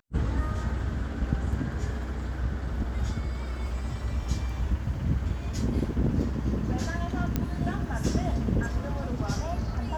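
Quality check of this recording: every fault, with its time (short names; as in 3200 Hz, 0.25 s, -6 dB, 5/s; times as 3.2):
7.36 pop -13 dBFS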